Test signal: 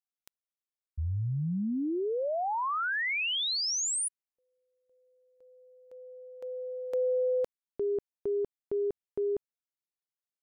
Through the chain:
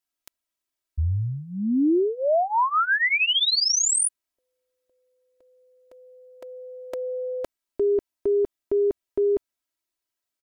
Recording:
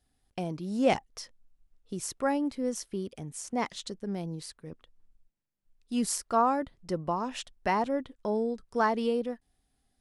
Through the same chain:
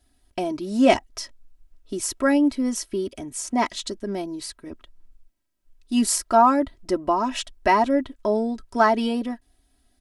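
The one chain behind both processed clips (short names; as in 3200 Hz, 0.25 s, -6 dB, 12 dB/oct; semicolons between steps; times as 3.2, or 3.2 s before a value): comb 3.1 ms, depth 85%; gain +6.5 dB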